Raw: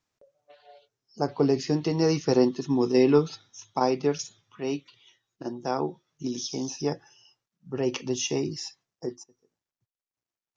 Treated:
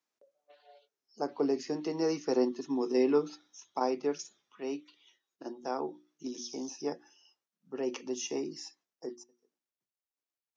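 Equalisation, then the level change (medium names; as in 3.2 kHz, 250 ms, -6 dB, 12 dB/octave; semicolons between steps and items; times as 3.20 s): high-pass 220 Hz 24 dB/octave; hum notches 60/120/180/240/300/360 Hz; dynamic bell 3.6 kHz, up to -6 dB, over -49 dBFS, Q 1.4; -6.0 dB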